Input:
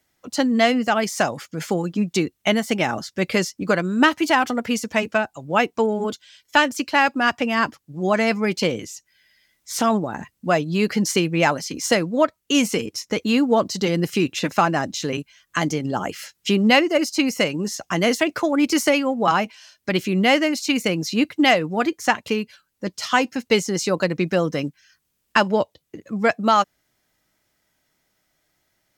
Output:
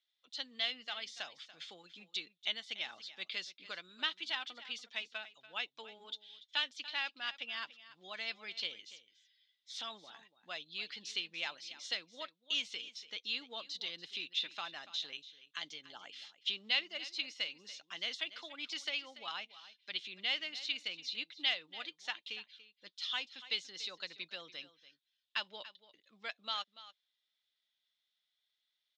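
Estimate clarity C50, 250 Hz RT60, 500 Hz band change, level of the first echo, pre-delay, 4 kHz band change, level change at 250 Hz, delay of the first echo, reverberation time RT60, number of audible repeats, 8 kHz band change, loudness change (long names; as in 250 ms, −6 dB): no reverb audible, no reverb audible, −32.5 dB, −16.0 dB, no reverb audible, −9.0 dB, −39.0 dB, 287 ms, no reverb audible, 1, −24.5 dB, −18.5 dB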